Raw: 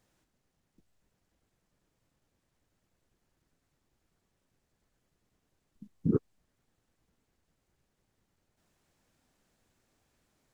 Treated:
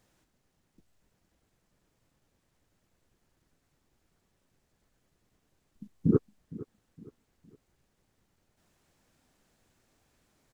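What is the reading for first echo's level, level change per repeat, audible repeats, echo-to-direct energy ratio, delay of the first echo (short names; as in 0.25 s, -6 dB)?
-18.0 dB, -8.5 dB, 3, -17.5 dB, 0.462 s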